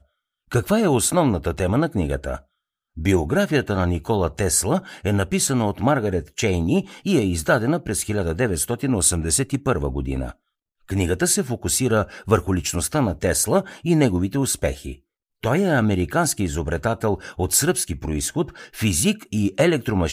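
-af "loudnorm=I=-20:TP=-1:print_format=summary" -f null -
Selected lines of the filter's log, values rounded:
Input Integrated:    -21.4 LUFS
Input True Peak:      -2.3 dBTP
Input LRA:             1.7 LU
Input Threshold:     -31.6 LUFS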